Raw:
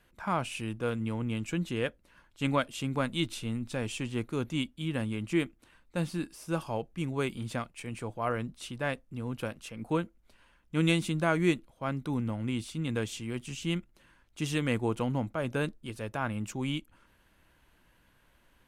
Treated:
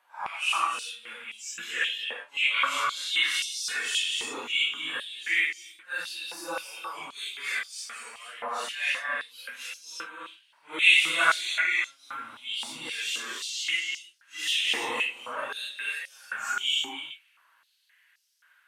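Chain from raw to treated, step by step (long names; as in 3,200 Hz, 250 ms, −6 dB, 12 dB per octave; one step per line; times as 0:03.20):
random phases in long frames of 200 ms
0:03.34–0:04.02: comb filter 2.7 ms, depth 94%
reverb whose tail is shaped and stops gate 340 ms rising, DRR 2.5 dB
noise reduction from a noise print of the clip's start 8 dB
high-pass on a step sequencer 3.8 Hz 890–5,300 Hz
level +6 dB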